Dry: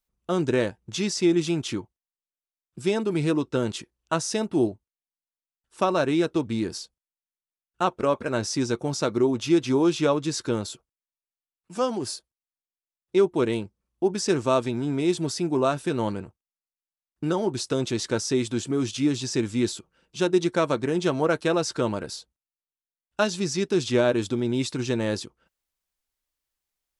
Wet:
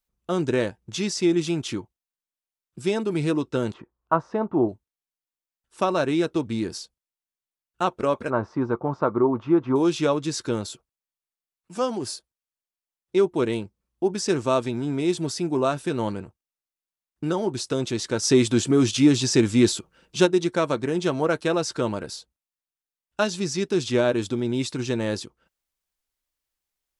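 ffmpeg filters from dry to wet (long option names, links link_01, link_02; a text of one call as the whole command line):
ffmpeg -i in.wav -filter_complex "[0:a]asplit=3[link_01][link_02][link_03];[link_01]afade=type=out:start_time=3.72:duration=0.02[link_04];[link_02]lowpass=frequency=1100:width_type=q:width=2.6,afade=type=in:start_time=3.72:duration=0.02,afade=type=out:start_time=4.68:duration=0.02[link_05];[link_03]afade=type=in:start_time=4.68:duration=0.02[link_06];[link_04][link_05][link_06]amix=inputs=3:normalize=0,asettb=1/sr,asplit=3[link_07][link_08][link_09];[link_07]atrim=end=8.304[link_10];[link_08]atrim=start=8.3:end=9.76,asetpts=PTS-STARTPTS,afade=type=in:duration=0.004:curve=qsin,afade=type=out:start_time=1.456:duration=0.004:curve=qsin,lowpass=frequency=1100:width_type=q:width=3.1[link_11];[link_09]atrim=start=9.756[link_12];[link_10][link_11]acrossfade=duration=0.004:curve1=hsin:curve2=qsin[link_13];[link_13][link_12]acrossfade=duration=0.004:curve1=qsin:curve2=hsin,asplit=3[link_14][link_15][link_16];[link_14]afade=type=out:start_time=18.22:duration=0.02[link_17];[link_15]acontrast=74,afade=type=in:start_time=18.22:duration=0.02,afade=type=out:start_time=20.25:duration=0.02[link_18];[link_16]afade=type=in:start_time=20.25:duration=0.02[link_19];[link_17][link_18][link_19]amix=inputs=3:normalize=0" out.wav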